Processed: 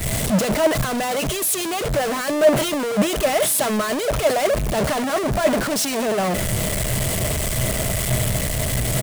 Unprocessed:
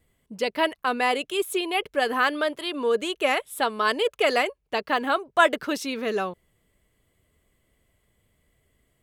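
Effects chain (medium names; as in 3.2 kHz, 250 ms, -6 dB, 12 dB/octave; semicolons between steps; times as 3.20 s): one-bit comparator; peaking EQ 9.1 kHz +8.5 dB 1.1 oct; waveshaping leveller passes 3; graphic EQ with 31 bands 125 Hz +12 dB, 200 Hz +7 dB, 630 Hz +11 dB; delay 771 ms -23 dB; three bands expanded up and down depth 100%; trim -3.5 dB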